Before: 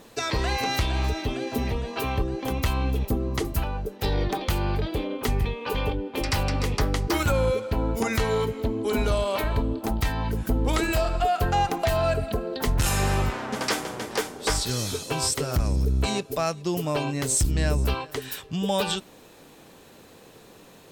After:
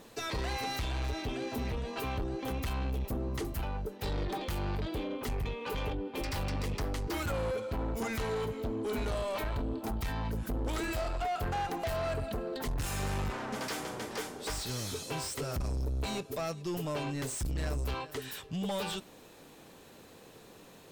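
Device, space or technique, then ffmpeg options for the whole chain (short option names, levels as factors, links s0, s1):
saturation between pre-emphasis and de-emphasis: -af "highshelf=f=3100:g=9,asoftclip=type=tanh:threshold=0.0531,highshelf=f=3100:g=-9,volume=0.631"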